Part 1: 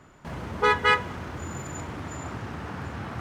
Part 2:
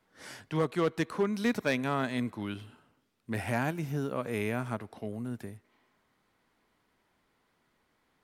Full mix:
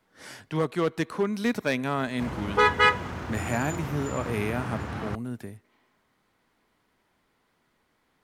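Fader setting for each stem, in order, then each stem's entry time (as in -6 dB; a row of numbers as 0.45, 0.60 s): +1.0, +2.5 dB; 1.95, 0.00 s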